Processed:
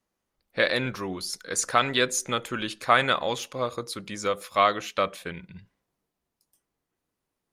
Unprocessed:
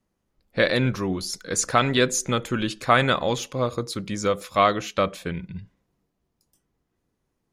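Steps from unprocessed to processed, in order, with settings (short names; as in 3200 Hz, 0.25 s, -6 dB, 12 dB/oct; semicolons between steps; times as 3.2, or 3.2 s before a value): low shelf 360 Hz -11.5 dB; Opus 48 kbps 48000 Hz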